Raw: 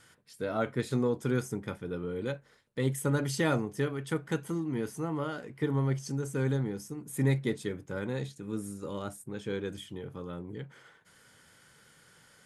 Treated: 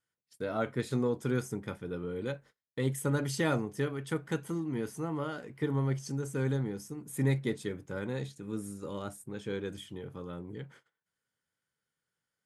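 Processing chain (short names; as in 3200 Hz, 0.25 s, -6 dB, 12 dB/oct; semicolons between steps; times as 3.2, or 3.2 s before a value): gate -52 dBFS, range -27 dB; gain -1.5 dB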